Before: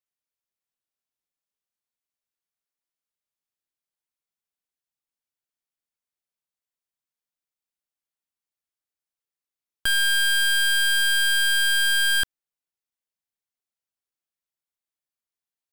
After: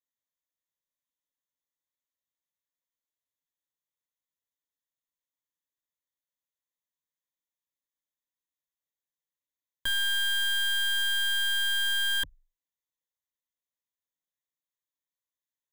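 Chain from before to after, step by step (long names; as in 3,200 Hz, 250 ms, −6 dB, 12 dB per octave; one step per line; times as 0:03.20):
EQ curve with evenly spaced ripples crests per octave 1.1, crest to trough 15 dB
level −8 dB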